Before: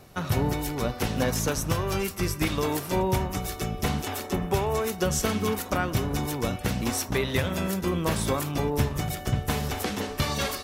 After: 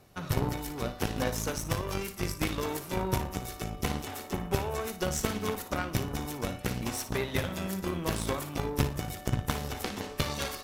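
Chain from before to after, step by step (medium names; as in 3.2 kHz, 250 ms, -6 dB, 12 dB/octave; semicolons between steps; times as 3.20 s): Chebyshev shaper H 2 -11 dB, 3 -14 dB, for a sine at -12 dBFS; flutter echo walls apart 9.9 m, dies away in 0.3 s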